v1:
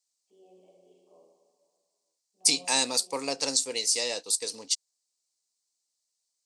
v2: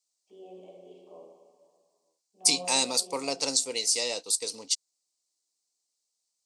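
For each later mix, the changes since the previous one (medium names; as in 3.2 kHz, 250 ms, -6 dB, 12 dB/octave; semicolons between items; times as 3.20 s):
first voice +10.0 dB; second voice: add band-stop 1.7 kHz, Q 5.9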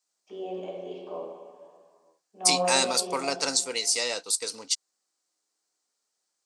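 first voice +11.5 dB; master: add peaking EQ 1.5 kHz +14.5 dB 0.72 oct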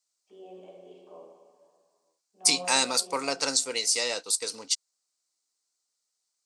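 first voice -11.5 dB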